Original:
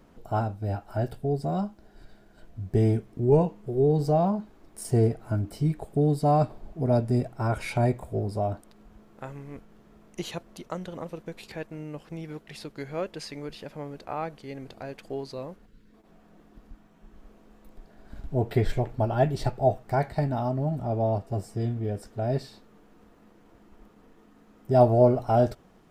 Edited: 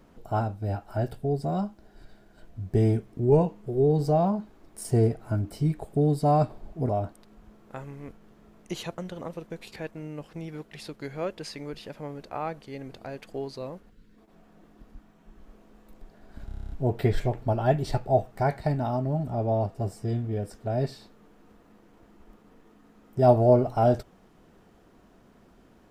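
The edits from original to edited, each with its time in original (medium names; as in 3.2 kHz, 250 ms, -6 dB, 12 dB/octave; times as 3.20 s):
6.89–8.37 s: delete
10.46–10.74 s: delete
18.22 s: stutter 0.03 s, 9 plays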